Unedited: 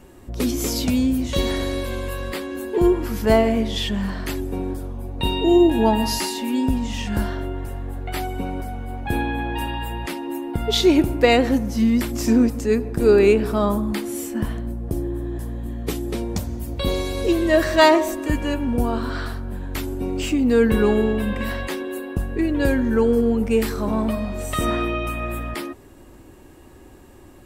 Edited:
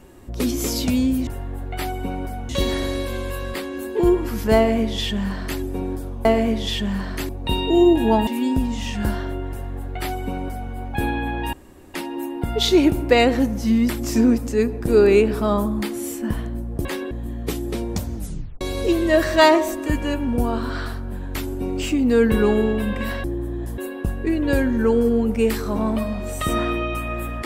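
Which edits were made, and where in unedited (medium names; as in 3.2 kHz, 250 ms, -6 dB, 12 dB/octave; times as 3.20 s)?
3.34–4.38 s: copy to 5.03 s
6.01–6.39 s: delete
7.62–8.84 s: copy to 1.27 s
9.65–10.06 s: room tone
14.97–15.51 s: swap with 21.64–21.90 s
16.55 s: tape stop 0.46 s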